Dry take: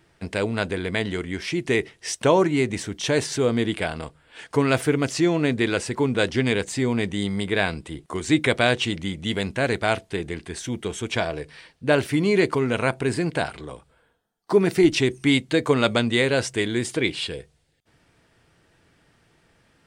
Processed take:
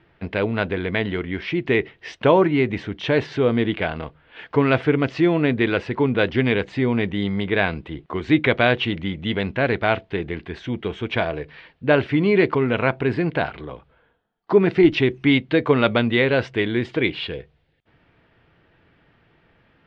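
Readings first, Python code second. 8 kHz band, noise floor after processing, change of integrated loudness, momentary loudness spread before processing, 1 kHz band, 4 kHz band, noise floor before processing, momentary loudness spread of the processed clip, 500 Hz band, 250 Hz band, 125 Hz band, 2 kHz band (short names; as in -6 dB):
under -20 dB, -62 dBFS, +2.0 dB, 11 LU, +2.5 dB, -1.5 dB, -64 dBFS, 11 LU, +2.5 dB, +2.5 dB, +2.5 dB, +2.5 dB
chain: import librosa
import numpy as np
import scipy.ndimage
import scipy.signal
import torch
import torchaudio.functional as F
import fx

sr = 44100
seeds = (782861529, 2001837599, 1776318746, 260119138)

y = scipy.signal.sosfilt(scipy.signal.butter(4, 3300.0, 'lowpass', fs=sr, output='sos'), x)
y = y * librosa.db_to_amplitude(2.5)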